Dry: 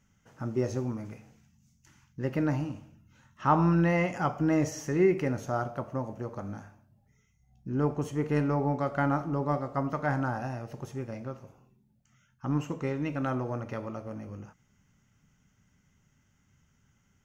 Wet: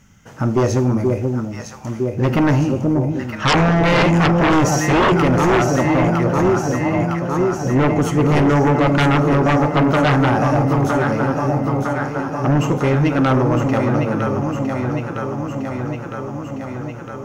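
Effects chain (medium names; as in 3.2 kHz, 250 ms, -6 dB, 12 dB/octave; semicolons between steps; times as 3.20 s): echo whose repeats swap between lows and highs 479 ms, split 830 Hz, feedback 82%, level -5 dB; sine folder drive 13 dB, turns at -10.5 dBFS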